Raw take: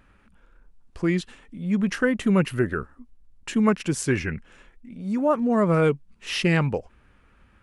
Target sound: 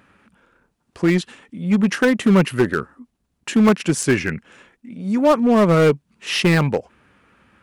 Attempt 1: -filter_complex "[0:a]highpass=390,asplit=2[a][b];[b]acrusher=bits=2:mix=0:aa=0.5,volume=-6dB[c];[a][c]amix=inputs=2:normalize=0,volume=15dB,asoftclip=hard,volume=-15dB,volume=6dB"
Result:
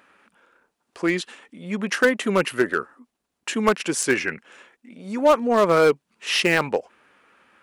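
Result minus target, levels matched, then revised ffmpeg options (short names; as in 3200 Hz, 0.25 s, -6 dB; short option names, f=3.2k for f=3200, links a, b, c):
125 Hz band -10.0 dB
-filter_complex "[0:a]highpass=130,asplit=2[a][b];[b]acrusher=bits=2:mix=0:aa=0.5,volume=-6dB[c];[a][c]amix=inputs=2:normalize=0,volume=15dB,asoftclip=hard,volume=-15dB,volume=6dB"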